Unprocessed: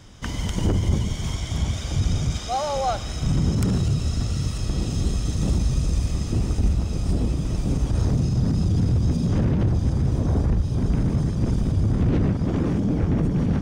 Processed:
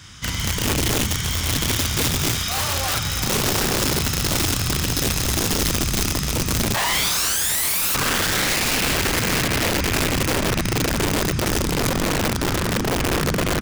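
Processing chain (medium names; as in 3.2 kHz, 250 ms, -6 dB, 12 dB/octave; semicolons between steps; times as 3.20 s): tracing distortion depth 0.18 ms; high-pass 61 Hz 12 dB/octave; doubling 34 ms -4 dB; on a send: multi-head delay 351 ms, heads first and second, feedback 48%, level -15.5 dB; on the sum: painted sound rise, 6.74–7.95 s, 850–2800 Hz -21 dBFS; in parallel at -3.5 dB: saturation -22.5 dBFS, distortion -9 dB; on the sum: FFT filter 110 Hz 0 dB, 630 Hz -12 dB, 1.3 kHz +6 dB; echo that smears into a reverb 875 ms, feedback 47%, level -10 dB; integer overflow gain 15 dB; trim -1 dB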